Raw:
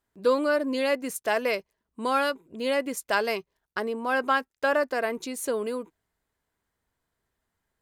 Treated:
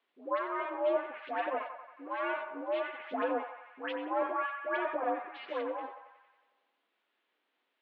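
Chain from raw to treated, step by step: minimum comb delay 9.2 ms; treble ducked by the level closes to 1300 Hz, closed at -25 dBFS; band-limited delay 91 ms, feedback 61%, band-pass 1300 Hz, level -6.5 dB; harmonic tremolo 1.2 Hz, depth 70%, crossover 1100 Hz; dispersion highs, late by 0.132 s, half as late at 1200 Hz; requantised 12-bit, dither triangular; mistuned SSB +61 Hz 190–3400 Hz; gain -1 dB

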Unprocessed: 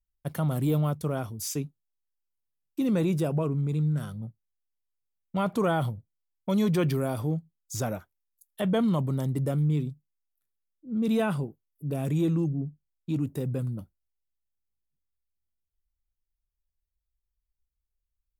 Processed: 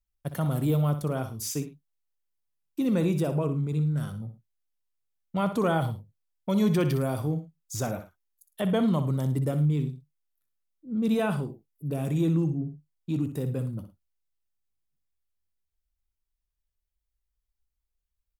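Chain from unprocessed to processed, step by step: tapped delay 61/108 ms -10.5/-18.5 dB

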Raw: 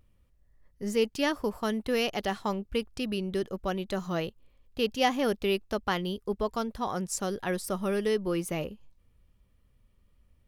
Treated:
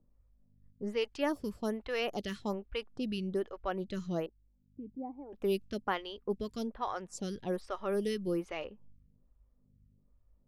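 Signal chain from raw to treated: low-pass opened by the level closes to 810 Hz, open at -25 dBFS; 4.26–5.33 vocal tract filter u; hum 50 Hz, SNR 29 dB; photocell phaser 1.2 Hz; gain -2 dB

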